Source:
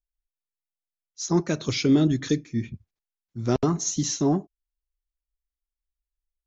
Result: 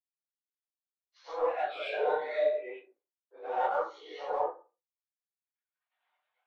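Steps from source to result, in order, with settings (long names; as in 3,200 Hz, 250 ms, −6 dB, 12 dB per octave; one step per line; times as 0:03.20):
random phases in long frames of 100 ms
camcorder AGC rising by 19 dB per second
reverb reduction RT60 1.6 s
downward expander −54 dBFS
spectral tilt −3.5 dB per octave
single-sideband voice off tune +150 Hz 520–3,300 Hz
in parallel at −9.5 dB: soft clipping −35 dBFS, distortion −6 dB
0:01.79–0:02.49: on the sum: flutter between parallel walls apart 5.1 metres, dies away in 0.47 s
convolution reverb RT60 0.30 s, pre-delay 82 ms, DRR −10 dB
micro pitch shift up and down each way 35 cents
level −8 dB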